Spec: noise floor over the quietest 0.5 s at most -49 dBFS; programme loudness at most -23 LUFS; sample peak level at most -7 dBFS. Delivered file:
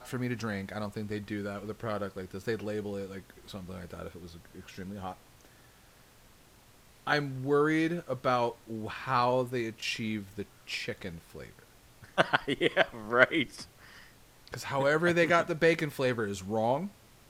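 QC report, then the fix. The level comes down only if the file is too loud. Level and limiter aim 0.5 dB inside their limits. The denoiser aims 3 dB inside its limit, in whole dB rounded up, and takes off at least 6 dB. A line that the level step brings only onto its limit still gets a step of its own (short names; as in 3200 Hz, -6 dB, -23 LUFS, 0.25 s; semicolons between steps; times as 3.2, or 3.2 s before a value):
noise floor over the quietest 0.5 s -58 dBFS: OK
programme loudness -30.5 LUFS: OK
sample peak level -4.5 dBFS: fail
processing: limiter -7.5 dBFS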